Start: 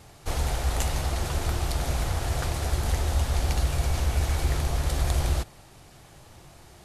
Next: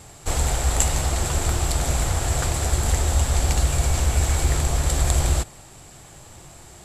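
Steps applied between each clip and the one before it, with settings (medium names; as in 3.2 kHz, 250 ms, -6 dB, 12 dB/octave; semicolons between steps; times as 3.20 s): peaking EQ 7.6 kHz +15 dB 0.2 oct; trim +4.5 dB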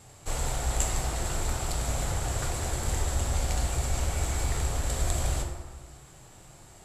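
plate-style reverb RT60 1.4 s, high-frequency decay 0.5×, DRR 1.5 dB; trim -9 dB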